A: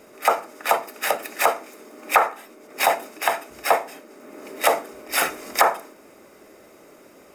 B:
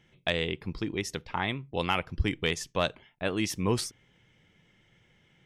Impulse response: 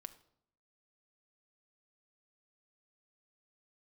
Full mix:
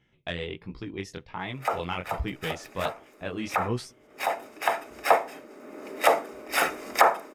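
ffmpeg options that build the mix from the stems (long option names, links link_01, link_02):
-filter_complex "[0:a]adelay=1400,volume=-1dB[link_01];[1:a]acontrast=82,flanger=delay=15.5:depth=7.3:speed=1.3,volume=-7.5dB,asplit=2[link_02][link_03];[link_03]apad=whole_len=385579[link_04];[link_01][link_04]sidechaincompress=threshold=-37dB:ratio=6:attack=11:release=1130[link_05];[link_05][link_02]amix=inputs=2:normalize=0,highshelf=frequency=4800:gain=-8.5"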